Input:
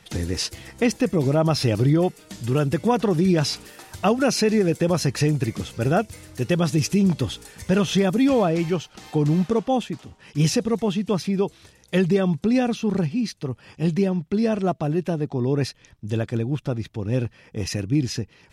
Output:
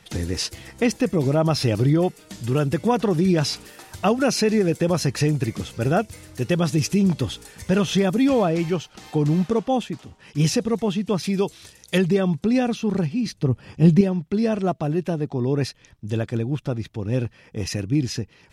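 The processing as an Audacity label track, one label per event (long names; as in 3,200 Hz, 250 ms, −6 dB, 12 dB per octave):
11.230000	11.980000	high-shelf EQ 2,700 Hz +10 dB
13.260000	14.010000	low-shelf EQ 450 Hz +9.5 dB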